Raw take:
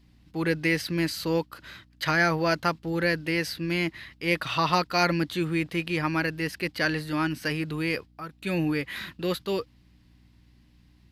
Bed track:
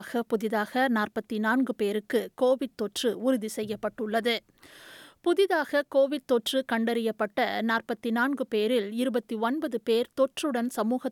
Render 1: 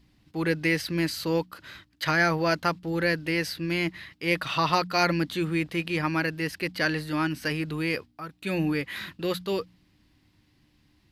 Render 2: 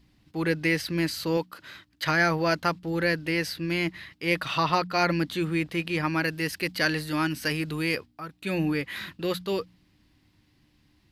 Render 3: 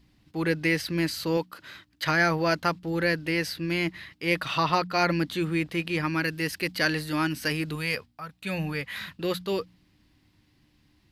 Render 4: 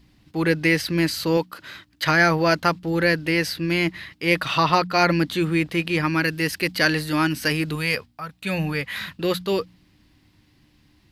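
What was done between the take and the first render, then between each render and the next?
de-hum 60 Hz, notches 4
1.37–1.88 s: high-pass 150 Hz 6 dB/octave; 4.63–5.10 s: treble shelf 4.3 kHz -6 dB; 6.24–7.95 s: treble shelf 4.1 kHz +6.5 dB
6.00–6.40 s: peaking EQ 710 Hz -6 dB; 7.75–9.18 s: peaking EQ 330 Hz -13 dB 0.49 oct
trim +5.5 dB

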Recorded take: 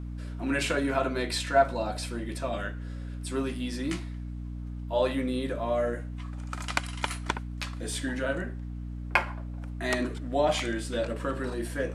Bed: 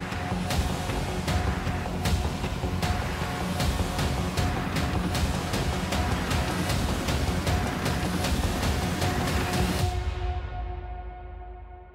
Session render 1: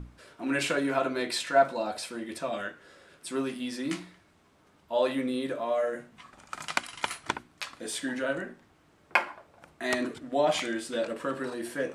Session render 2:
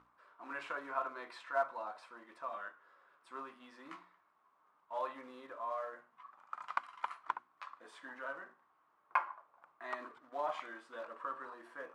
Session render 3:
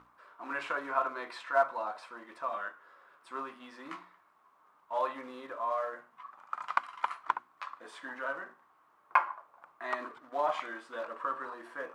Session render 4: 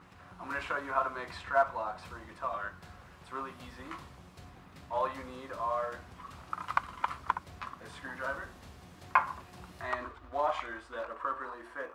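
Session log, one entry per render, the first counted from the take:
hum notches 60/120/180/240/300/360 Hz
short-mantissa float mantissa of 2-bit; band-pass filter 1.1 kHz, Q 4.4
trim +7 dB
add bed -25.5 dB

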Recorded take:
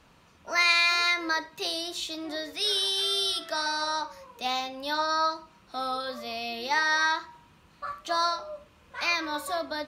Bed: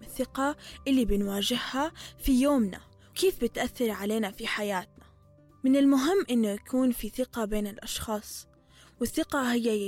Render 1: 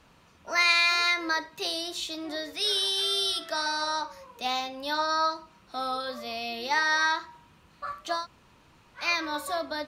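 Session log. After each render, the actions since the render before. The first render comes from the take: 8.19–9.01 s: room tone, crossfade 0.16 s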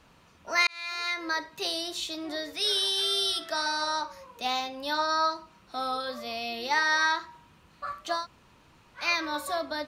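0.67–1.51 s: fade in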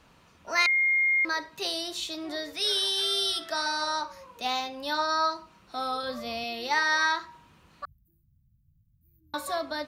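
0.66–1.25 s: bleep 2.13 kHz -20.5 dBFS; 6.03–6.44 s: bass shelf 230 Hz +9 dB; 7.85–9.34 s: inverse Chebyshev band-stop 580–5700 Hz, stop band 70 dB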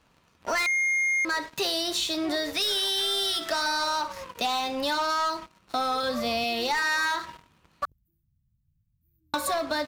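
waveshaping leveller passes 3; compression, threshold -25 dBFS, peak gain reduction 9.5 dB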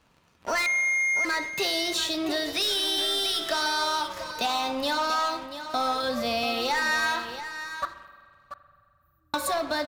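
delay 686 ms -11 dB; spring tank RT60 2.1 s, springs 42 ms, chirp 40 ms, DRR 12.5 dB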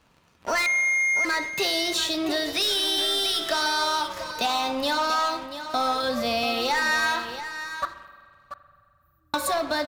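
trim +2 dB

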